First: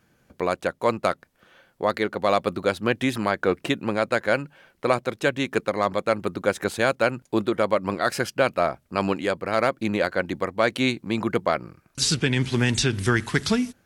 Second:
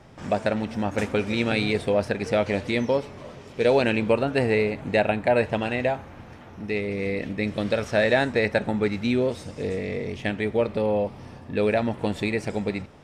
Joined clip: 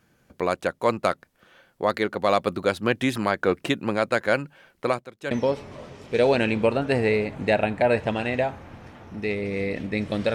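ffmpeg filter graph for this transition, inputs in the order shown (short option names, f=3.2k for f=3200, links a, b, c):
-filter_complex "[0:a]asettb=1/sr,asplit=3[a][b][c];[a]atrim=end=4.764[d];[b]atrim=start=4.76:end=5.31,asetpts=PTS-STARTPTS,afade=t=in:d=0.004:c=qsin,afade=t=out:st=0.546:d=0.004:c=qsin,tremolo=f=1.3:d=0.86[e];[c]atrim=start=5.306[f];[d][e]acrossfade=d=0.004:c1=hsin:c2=qsin[g];[g][f]acrossfade=d=0.004:c1=qsin:c2=hsin,apad=whole_dur=10.34,atrim=end=10.34,atrim=end=5.312[h];[1:a]atrim=start=2.768:end=7.8[i];[h][i]acrossfade=d=0.004:c1=hsin:c2=hsin"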